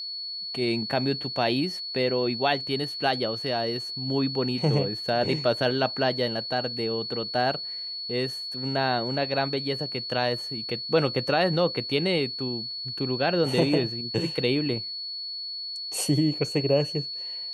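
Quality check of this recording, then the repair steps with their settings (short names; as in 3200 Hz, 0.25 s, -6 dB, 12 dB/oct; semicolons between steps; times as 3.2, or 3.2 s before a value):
tone 4400 Hz -32 dBFS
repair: notch 4400 Hz, Q 30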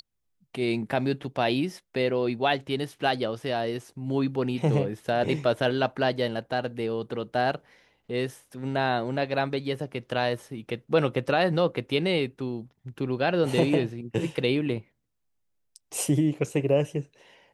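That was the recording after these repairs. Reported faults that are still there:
none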